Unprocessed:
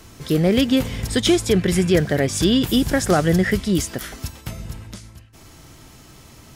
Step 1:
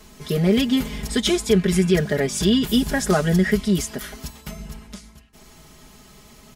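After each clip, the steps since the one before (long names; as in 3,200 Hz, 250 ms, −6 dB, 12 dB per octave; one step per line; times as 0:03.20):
comb filter 4.8 ms, depth 98%
level −4.5 dB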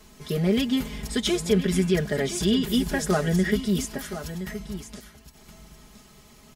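single-tap delay 1,019 ms −11.5 dB
level −4.5 dB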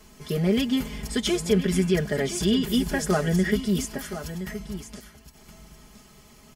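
notch filter 3,800 Hz, Q 12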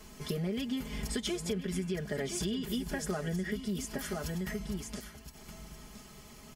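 downward compressor 6 to 1, threshold −32 dBFS, peak gain reduction 15.5 dB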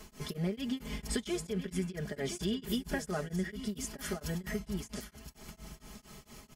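tremolo along a rectified sine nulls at 4.4 Hz
level +2 dB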